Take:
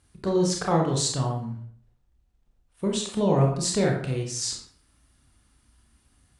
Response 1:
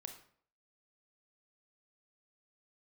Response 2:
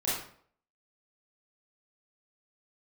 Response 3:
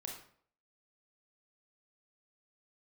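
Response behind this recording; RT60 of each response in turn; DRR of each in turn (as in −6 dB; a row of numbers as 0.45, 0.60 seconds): 3; 0.55, 0.55, 0.55 seconds; 5.0, −9.5, 0.0 decibels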